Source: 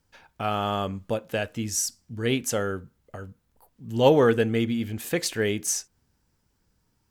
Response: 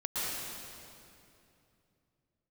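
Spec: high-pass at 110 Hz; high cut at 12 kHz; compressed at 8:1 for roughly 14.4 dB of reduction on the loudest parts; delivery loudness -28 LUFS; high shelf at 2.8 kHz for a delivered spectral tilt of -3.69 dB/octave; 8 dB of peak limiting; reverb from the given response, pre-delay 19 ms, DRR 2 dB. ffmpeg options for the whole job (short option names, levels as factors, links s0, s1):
-filter_complex "[0:a]highpass=110,lowpass=12000,highshelf=f=2800:g=6.5,acompressor=threshold=0.0447:ratio=8,alimiter=limit=0.0668:level=0:latency=1,asplit=2[s0][s1];[1:a]atrim=start_sample=2205,adelay=19[s2];[s1][s2]afir=irnorm=-1:irlink=0,volume=0.376[s3];[s0][s3]amix=inputs=2:normalize=0,volume=1.88"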